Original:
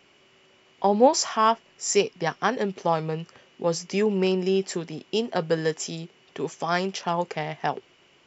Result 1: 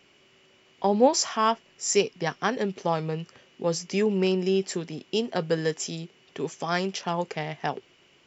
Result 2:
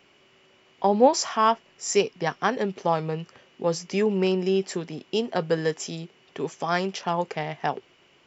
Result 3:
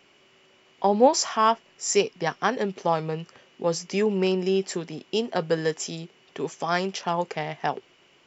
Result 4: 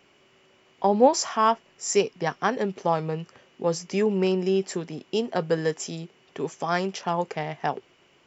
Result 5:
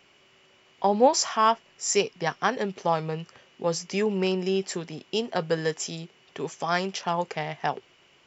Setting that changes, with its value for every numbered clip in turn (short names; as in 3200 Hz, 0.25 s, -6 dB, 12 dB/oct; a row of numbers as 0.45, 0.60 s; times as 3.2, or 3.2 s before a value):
bell, frequency: 900, 11000, 74, 3800, 290 Hz